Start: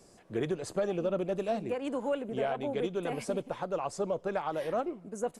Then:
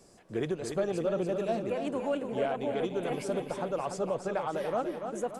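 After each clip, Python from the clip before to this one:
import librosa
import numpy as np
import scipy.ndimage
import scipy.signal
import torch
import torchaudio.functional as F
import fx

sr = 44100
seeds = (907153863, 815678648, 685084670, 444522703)

y = fx.echo_feedback(x, sr, ms=288, feedback_pct=48, wet_db=-7.0)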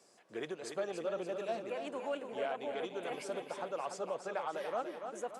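y = fx.weighting(x, sr, curve='A')
y = y * 10.0 ** (-4.0 / 20.0)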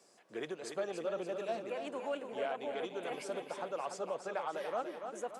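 y = scipy.signal.sosfilt(scipy.signal.butter(2, 100.0, 'highpass', fs=sr, output='sos'), x)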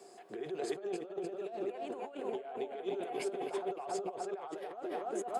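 y = fx.notch(x, sr, hz=5800.0, q=7.3)
y = fx.over_compress(y, sr, threshold_db=-46.0, ratio=-1.0)
y = fx.small_body(y, sr, hz=(390.0, 720.0), ring_ms=60, db=15)
y = y * 10.0 ** (-1.0 / 20.0)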